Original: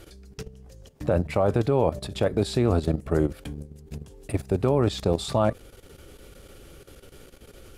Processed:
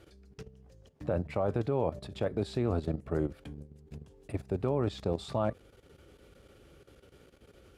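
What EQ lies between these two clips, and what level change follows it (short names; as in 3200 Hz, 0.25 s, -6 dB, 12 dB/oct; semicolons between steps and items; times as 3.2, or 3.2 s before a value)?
HPF 53 Hz; LPF 3400 Hz 6 dB/oct; -8.0 dB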